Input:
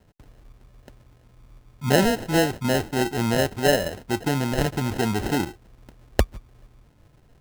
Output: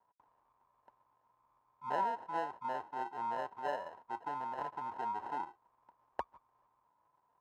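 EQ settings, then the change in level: band-pass 970 Hz, Q 12; +3.5 dB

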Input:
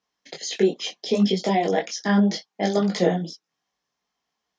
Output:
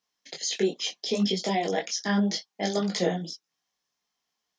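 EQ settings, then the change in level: high shelf 2700 Hz +9 dB; -6.0 dB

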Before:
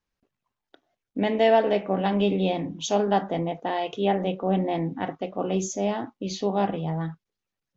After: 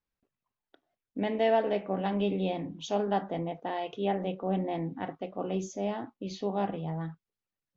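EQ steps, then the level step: air absorption 96 m; -6.0 dB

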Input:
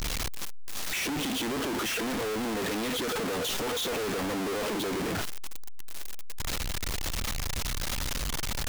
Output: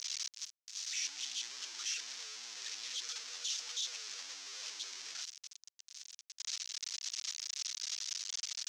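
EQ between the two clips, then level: band-pass 6000 Hz, Q 2.9; air absorption 170 m; tilt +4 dB/oct; +1.5 dB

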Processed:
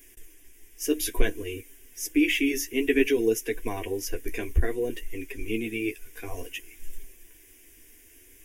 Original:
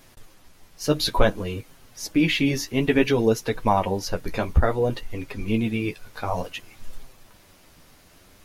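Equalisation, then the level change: high shelf 3800 Hz +8 dB; fixed phaser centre 360 Hz, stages 4; fixed phaser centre 860 Hz, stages 8; 0.0 dB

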